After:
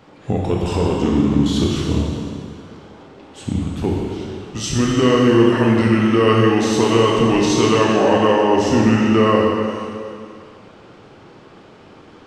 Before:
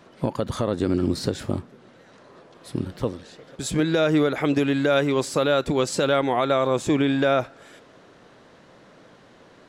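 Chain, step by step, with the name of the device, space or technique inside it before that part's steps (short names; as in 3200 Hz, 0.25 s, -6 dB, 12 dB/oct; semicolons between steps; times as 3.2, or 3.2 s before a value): slowed and reverbed (varispeed -21%; reverb RT60 2.3 s, pre-delay 15 ms, DRR -2.5 dB); gain +3 dB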